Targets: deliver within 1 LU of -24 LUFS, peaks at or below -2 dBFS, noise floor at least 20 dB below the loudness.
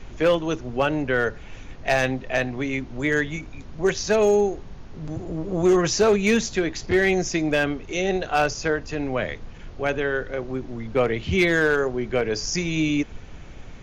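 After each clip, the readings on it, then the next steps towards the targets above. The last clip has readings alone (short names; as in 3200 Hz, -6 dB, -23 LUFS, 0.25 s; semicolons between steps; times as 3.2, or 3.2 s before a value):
clipped 0.5%; flat tops at -12.0 dBFS; noise floor -41 dBFS; noise floor target -43 dBFS; loudness -23.0 LUFS; peak -12.0 dBFS; loudness target -24.0 LUFS
-> clip repair -12 dBFS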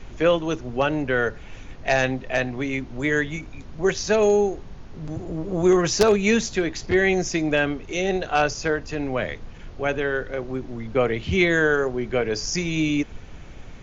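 clipped 0.0%; noise floor -41 dBFS; noise floor target -43 dBFS
-> noise print and reduce 6 dB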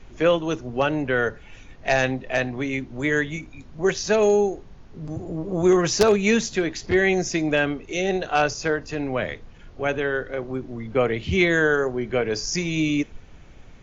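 noise floor -46 dBFS; loudness -23.0 LUFS; peak -3.0 dBFS; loudness target -24.0 LUFS
-> gain -1 dB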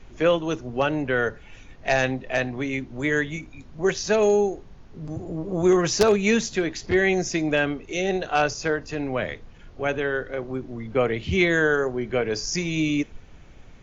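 loudness -24.0 LUFS; peak -4.0 dBFS; noise floor -47 dBFS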